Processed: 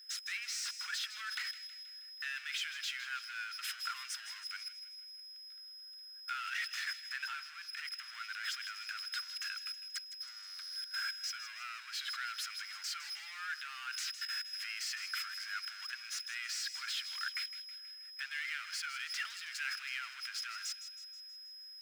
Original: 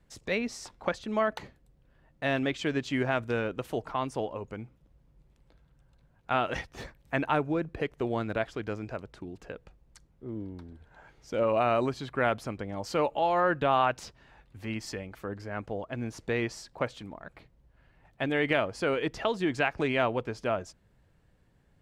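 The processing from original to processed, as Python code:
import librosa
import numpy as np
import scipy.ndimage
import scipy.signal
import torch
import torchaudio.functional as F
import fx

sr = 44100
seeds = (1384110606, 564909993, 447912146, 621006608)

p1 = x + 10.0 ** (-54.0 / 20.0) * np.sin(2.0 * np.pi * 5100.0 * np.arange(len(x)) / sr)
p2 = fx.high_shelf(p1, sr, hz=2000.0, db=4.0)
p3 = fx.power_curve(p2, sr, exponent=0.5)
p4 = fx.level_steps(p3, sr, step_db=16)
p5 = scipy.signal.sosfilt(scipy.signal.cheby1(5, 1.0, 1400.0, 'highpass', fs=sr, output='sos'), p4)
p6 = fx.tilt_eq(p5, sr, slope=-3.0)
p7 = p6 + fx.echo_wet_highpass(p6, sr, ms=160, feedback_pct=54, hz=2300.0, wet_db=-11, dry=0)
y = F.gain(torch.from_numpy(p7), 1.0).numpy()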